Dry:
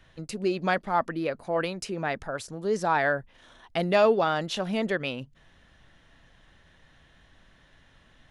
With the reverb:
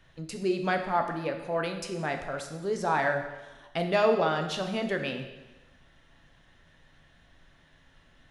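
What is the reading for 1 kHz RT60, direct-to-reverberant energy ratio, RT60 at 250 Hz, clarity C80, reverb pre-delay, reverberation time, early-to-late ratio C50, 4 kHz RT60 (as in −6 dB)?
1.1 s, 4.5 dB, 1.2 s, 9.5 dB, 4 ms, 1.1 s, 7.5 dB, 1.0 s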